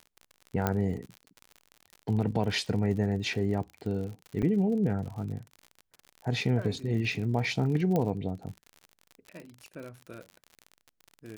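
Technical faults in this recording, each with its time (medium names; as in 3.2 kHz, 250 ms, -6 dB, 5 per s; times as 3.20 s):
crackle 60 per s -37 dBFS
0.67 s: pop -12 dBFS
4.42–4.43 s: dropout 7.5 ms
7.96 s: pop -16 dBFS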